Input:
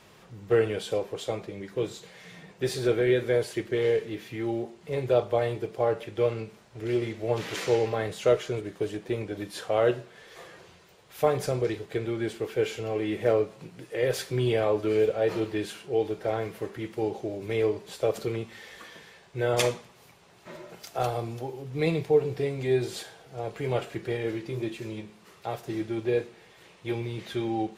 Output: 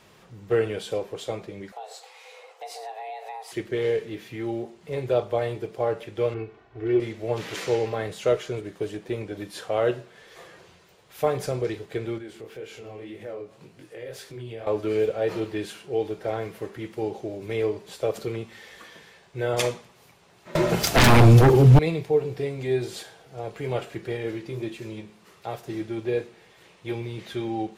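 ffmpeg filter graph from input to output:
-filter_complex "[0:a]asettb=1/sr,asplit=3[s0][s1][s2];[s0]atrim=end=1.724[s3];[s1]atrim=start=1.72:end=3.52,asetpts=PTS-STARTPTS,afade=t=in:d=0.004:c=qsin,afade=t=out:st=1.796:d=0.004:c=qsin,afreqshift=330,acompressor=threshold=0.0158:ratio=4:attack=3.2:release=140:knee=1:detection=peak[s4];[s2]atrim=start=3.516[s5];[s3][s4]acrossfade=d=0.004:c1=hsin:c2=qsin[s6];[s6][s5]acrossfade=d=0.004:c1=qsin:c2=hsin,asettb=1/sr,asplit=3[s7][s8][s9];[s7]atrim=end=6.344[s10];[s8]atrim=start=6.34:end=7,asetpts=PTS-STARTPTS,afade=t=in:d=0.004:c=qsin,afade=t=out:st=0.656:d=0.004:c=qsin,lowpass=2200,aecho=1:1:2.7:0.92,atrim=end_sample=29106[s11];[s9]atrim=start=6.996[s12];[s10][s11]acrossfade=d=0.004:c1=hsin:c2=qsin[s13];[s13][s12]acrossfade=d=0.004:c1=qsin:c2=hsin,asettb=1/sr,asplit=3[s14][s15][s16];[s14]atrim=end=12.184[s17];[s15]atrim=start=12.18:end=14.67,asetpts=PTS-STARTPTS,afade=t=in:d=0.004:c=qsin,afade=t=out:st=2.486:d=0.004:c=qsin,flanger=delay=19.5:depth=7.2:speed=1.9,acompressor=threshold=0.00891:ratio=2:attack=3.2:release=140:knee=1:detection=peak[s18];[s16]atrim=start=14.666[s19];[s17][s18]acrossfade=d=0.004:c1=hsin:c2=qsin[s20];[s20][s19]acrossfade=d=0.004:c1=qsin:c2=hsin,asettb=1/sr,asplit=3[s21][s22][s23];[s21]atrim=end=20.554[s24];[s22]atrim=start=20.55:end=21.79,asetpts=PTS-STARTPTS,afade=t=in:d=0.004:c=qsin,afade=t=out:st=1.236:d=0.004:c=qsin,aeval=exprs='0.188*sin(PI/2*7.08*val(0)/0.188)':c=same,lowshelf=f=220:g=11[s25];[s23]atrim=start=21.786[s26];[s24][s25]acrossfade=d=0.004:c1=hsin:c2=qsin[s27];[s27][s26]acrossfade=d=0.004:c1=qsin:c2=hsin"

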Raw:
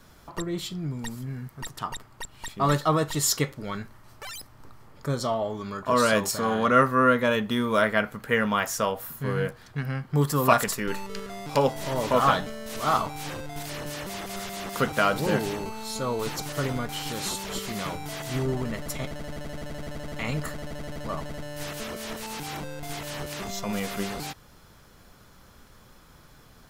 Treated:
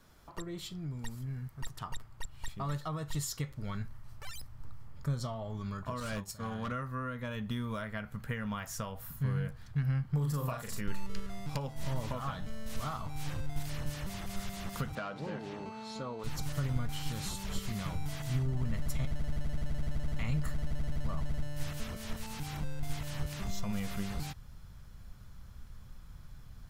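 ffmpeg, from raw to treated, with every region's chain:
-filter_complex "[0:a]asettb=1/sr,asplit=3[s0][s1][s2];[s0]atrim=end=6.004[s3];[s1]atrim=start=6:end=6.72,asetpts=PTS-STARTPTS,afade=t=in:d=0.004:c=qsin,afade=t=out:st=0.716:d=0.004:c=qsin,agate=range=0.0224:threshold=0.0708:ratio=3:release=100:detection=peak,volume=10,asoftclip=hard,volume=0.1[s4];[s2]atrim=start=6.716[s5];[s3][s4]acrossfade=d=0.004:c1=hsin:c2=qsin[s6];[s6][s5]acrossfade=d=0.004:c1=qsin:c2=hsin,asettb=1/sr,asplit=3[s7][s8][s9];[s7]atrim=end=10.134[s10];[s8]atrim=start=10.13:end=10.81,asetpts=PTS-STARTPTS,afade=t=in:d=0.004:c=qsin,afade=t=out:st=0.676:d=0.004:c=qsin,equalizer=f=520:w=2.2:g=5.5,bandreject=f=50:t=h:w=6,bandreject=f=100:t=h:w=6,bandreject=f=150:t=h:w=6,bandreject=f=200:t=h:w=6,bandreject=f=250:t=h:w=6,bandreject=f=300:t=h:w=6,bandreject=f=350:t=h:w=6,asplit=2[s11][s12];[s12]adelay=40,volume=0.631[s13];[s11][s13]amix=inputs=2:normalize=0,atrim=end_sample=29988[s14];[s9]atrim=start=10.806[s15];[s10][s14]acrossfade=d=0.004:c1=hsin:c2=qsin[s16];[s16][s15]acrossfade=d=0.004:c1=qsin:c2=hsin,asettb=1/sr,asplit=3[s17][s18][s19];[s17]atrim=end=14.954[s20];[s18]atrim=start=14.95:end=16.24,asetpts=PTS-STARTPTS,afade=t=in:d=0.004:c=qsin,afade=t=out:st=1.286:d=0.004:c=qsin,equalizer=f=470:w=0.44:g=5.5,asoftclip=type=hard:threshold=0.237,highpass=220,lowpass=4700[s21];[s19]atrim=start=16.236[s22];[s20][s21]acrossfade=d=0.004:c1=hsin:c2=qsin[s23];[s23][s22]acrossfade=d=0.004:c1=qsin:c2=hsin,acompressor=threshold=0.0447:ratio=6,asubboost=boost=7.5:cutoff=130,volume=0.376"

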